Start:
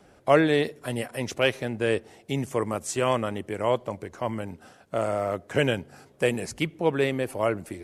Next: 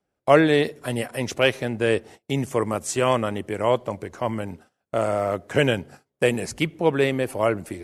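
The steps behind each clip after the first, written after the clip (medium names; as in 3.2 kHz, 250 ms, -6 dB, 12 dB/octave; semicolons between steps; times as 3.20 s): gate -45 dBFS, range -27 dB; trim +3.5 dB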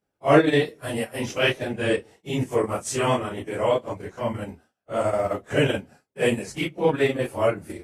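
phase randomisation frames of 100 ms; transient shaper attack -2 dB, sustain -7 dB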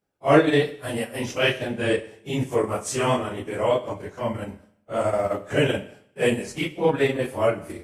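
reverberation RT60 0.70 s, pre-delay 29 ms, DRR 13 dB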